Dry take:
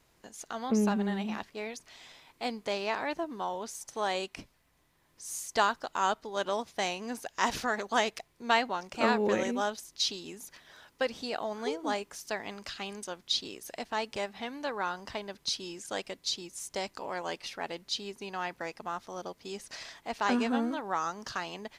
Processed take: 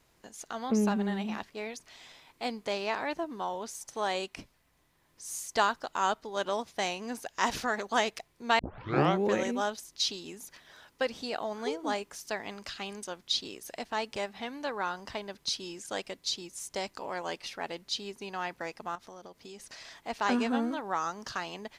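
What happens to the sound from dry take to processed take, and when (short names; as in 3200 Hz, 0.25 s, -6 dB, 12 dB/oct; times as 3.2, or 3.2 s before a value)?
8.59 tape start 0.66 s
18.95–19.92 compressor, threshold -43 dBFS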